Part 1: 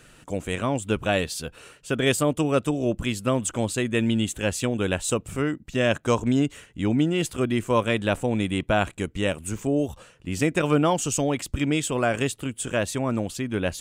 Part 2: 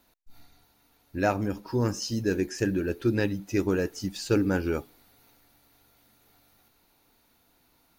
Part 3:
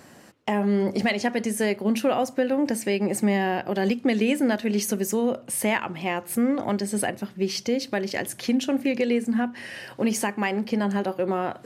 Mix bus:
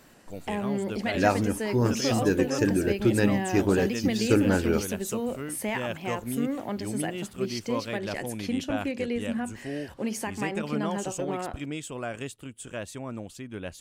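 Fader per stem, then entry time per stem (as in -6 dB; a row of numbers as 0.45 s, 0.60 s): -11.0 dB, +2.0 dB, -7.0 dB; 0.00 s, 0.00 s, 0.00 s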